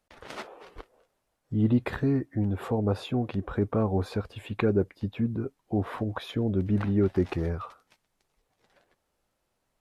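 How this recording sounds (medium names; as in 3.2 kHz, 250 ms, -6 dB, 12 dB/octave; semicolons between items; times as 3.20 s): noise floor -78 dBFS; spectral tilt -7.5 dB/octave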